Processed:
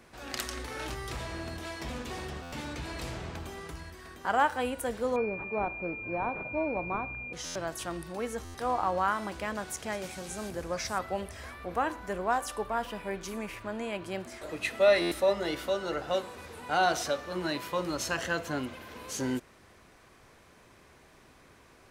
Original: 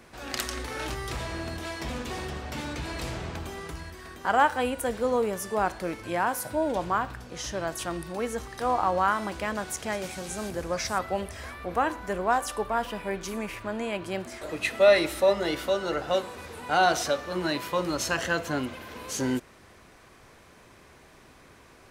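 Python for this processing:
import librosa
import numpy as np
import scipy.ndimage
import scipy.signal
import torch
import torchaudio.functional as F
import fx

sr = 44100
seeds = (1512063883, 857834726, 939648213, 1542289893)

y = fx.buffer_glitch(x, sr, at_s=(2.42, 7.45, 8.44, 15.01), block=512, repeats=8)
y = fx.pwm(y, sr, carrier_hz=2400.0, at=(5.16, 7.33))
y = F.gain(torch.from_numpy(y), -4.0).numpy()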